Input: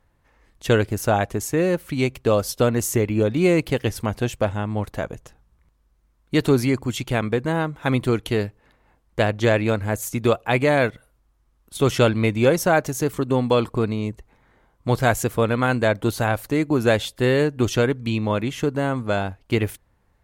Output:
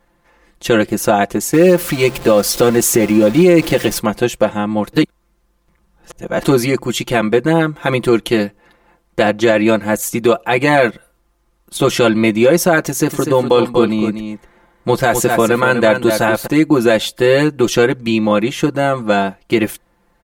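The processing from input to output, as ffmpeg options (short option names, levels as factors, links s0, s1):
-filter_complex "[0:a]asettb=1/sr,asplit=3[s0][s1][s2];[s0]atrim=end=1.534[s3];[s1]atrim=start=1.53:end=3.99,asetpts=PTS-STARTPTS,afade=t=in:d=0.004:c=qsin,afade=t=out:st=2.456:d=0.004:c=qsin,aeval=exprs='val(0)+0.5*0.0355*sgn(val(0))':c=same[s4];[s2]atrim=start=3.986[s5];[s3][s4]acrossfade=d=0.004:c1=hsin:c2=qsin[s6];[s6][s5]acrossfade=d=0.004:c1=qsin:c2=hsin,asettb=1/sr,asplit=3[s7][s8][s9];[s7]atrim=end=12.854[s10];[s8]atrim=start=12.85:end=16.47,asetpts=PTS-STARTPTS,afade=t=in:d=0.004:c=qsin,afade=t=out:st=3.616:d=0.004:c=qsin,aecho=1:1:245:0.398,atrim=end_sample=159642[s11];[s9]atrim=start=16.466[s12];[s10][s11]acrossfade=d=0.004:c1=hsin:c2=qsin[s13];[s13][s12]acrossfade=d=0.004:c1=qsin:c2=hsin,asplit=3[s14][s15][s16];[s14]atrim=end=4.932[s17];[s15]atrim=start=4.928:end=6.442,asetpts=PTS-STARTPTS,areverse[s18];[s16]atrim=start=6.438[s19];[s17][s18]acrossfade=d=0.004:c1=hsin:c2=hsin[s20];[s20][s19]acrossfade=d=0.004:c1=hsin:c2=hsin,lowshelf=f=170:t=q:w=1.5:g=-6,aecho=1:1:5.8:0.88,alimiter=level_in=2.37:limit=0.891:release=50:level=0:latency=1,volume=0.891"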